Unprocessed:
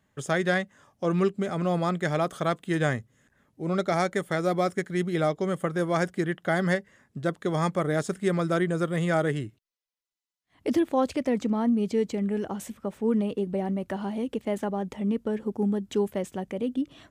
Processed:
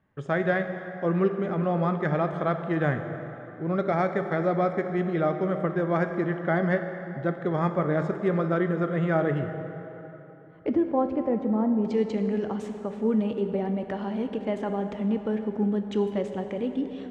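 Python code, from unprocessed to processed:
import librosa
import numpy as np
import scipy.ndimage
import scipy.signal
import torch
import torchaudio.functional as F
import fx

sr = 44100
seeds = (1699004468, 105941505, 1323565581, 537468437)

y = fx.lowpass(x, sr, hz=fx.steps((0.0, 2000.0), (10.69, 1100.0), (11.85, 4100.0)), slope=12)
y = fx.rev_plate(y, sr, seeds[0], rt60_s=3.5, hf_ratio=0.65, predelay_ms=0, drr_db=6.5)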